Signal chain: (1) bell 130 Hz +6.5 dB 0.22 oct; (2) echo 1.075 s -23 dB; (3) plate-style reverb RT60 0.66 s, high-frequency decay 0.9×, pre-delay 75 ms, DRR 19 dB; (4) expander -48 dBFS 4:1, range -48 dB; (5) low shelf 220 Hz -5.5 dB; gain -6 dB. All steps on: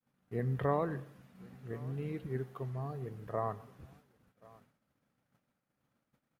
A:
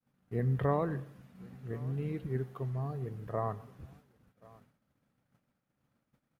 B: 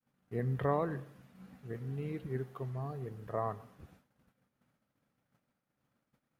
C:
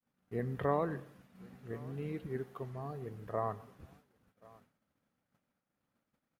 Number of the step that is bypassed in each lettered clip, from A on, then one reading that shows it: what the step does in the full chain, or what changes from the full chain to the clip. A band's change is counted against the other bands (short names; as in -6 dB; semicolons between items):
5, 125 Hz band +3.5 dB; 2, momentary loudness spread change -1 LU; 1, 125 Hz band -4.0 dB